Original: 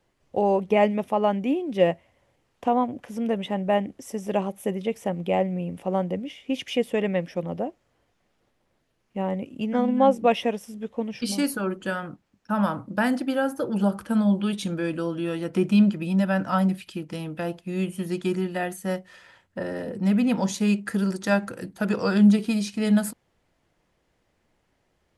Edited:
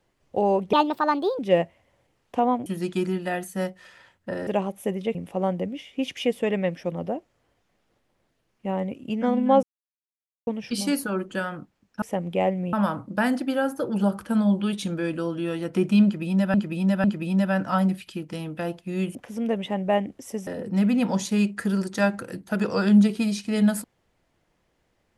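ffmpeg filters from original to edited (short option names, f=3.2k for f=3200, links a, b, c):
-filter_complex "[0:a]asplit=14[a][b][c][d][e][f][g][h][i][j][k][l][m][n];[a]atrim=end=0.734[o];[b]atrim=start=0.73:end=1.68,asetpts=PTS-STARTPTS,asetrate=63504,aresample=44100[p];[c]atrim=start=1.676:end=2.952[q];[d]atrim=start=17.948:end=19.762[r];[e]atrim=start=4.268:end=4.952[s];[f]atrim=start=5.658:end=10.14,asetpts=PTS-STARTPTS,afade=t=out:st=4.478:d=0.004:c=hsin[t];[g]atrim=start=10.14:end=10.98,asetpts=PTS-STARTPTS,volume=0[u];[h]atrim=start=10.98:end=12.532,asetpts=PTS-STARTPTS,afade=t=in:d=0.004:c=hsin[v];[i]atrim=start=4.948:end=5.662[w];[j]atrim=start=12.528:end=16.342[x];[k]atrim=start=15.838:end=16.342[y];[l]atrim=start=15.838:end=17.952[z];[m]atrim=start=2.948:end=4.272[aa];[n]atrim=start=19.758[ab];[o][p]acrossfade=d=0.004:c1=hsin:c2=hsin[ac];[ac][q]acrossfade=d=0.004:c1=hsin:c2=hsin[ad];[ad][r]acrossfade=d=0.004:c1=hsin:c2=hsin[ae];[ae][s]acrossfade=d=0.004:c1=hsin:c2=hsin[af];[t][u][v]concat=n=3:v=0:a=1[ag];[af][ag]acrossfade=d=0.004:c1=hsin:c2=hsin[ah];[ah][w]acrossfade=d=0.004:c1=hsin:c2=hsin[ai];[ai][x]acrossfade=d=0.004:c1=hsin:c2=hsin[aj];[aj][y]acrossfade=d=0.004:c1=hsin:c2=hsin[ak];[ak][z]acrossfade=d=0.004:c1=hsin:c2=hsin[al];[al][aa]acrossfade=d=0.004:c1=hsin:c2=hsin[am];[am][ab]acrossfade=d=0.004:c1=hsin:c2=hsin"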